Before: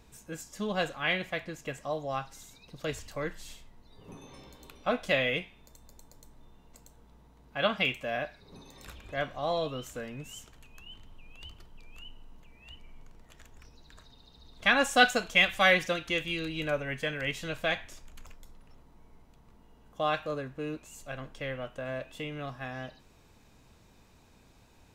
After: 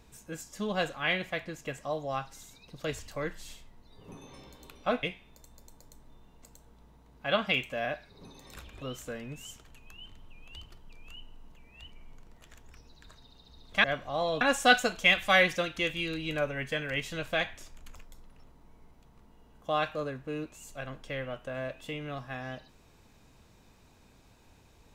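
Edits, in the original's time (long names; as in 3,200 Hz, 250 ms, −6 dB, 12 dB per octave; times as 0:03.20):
0:05.03–0:05.34: remove
0:09.13–0:09.70: move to 0:14.72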